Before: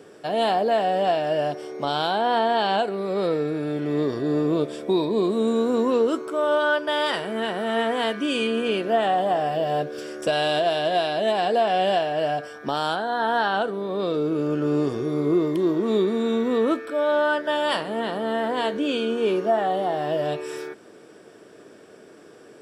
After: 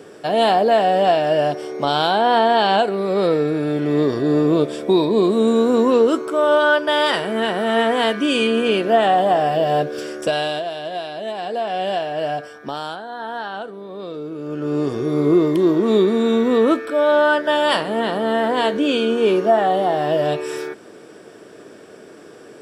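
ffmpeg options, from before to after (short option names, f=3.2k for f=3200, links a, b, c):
-af "volume=24.5dB,afade=t=out:st=10.03:d=0.64:silence=0.281838,afade=t=in:st=11.36:d=1:silence=0.473151,afade=t=out:st=12.36:d=0.65:silence=0.421697,afade=t=in:st=14.4:d=0.83:silence=0.251189"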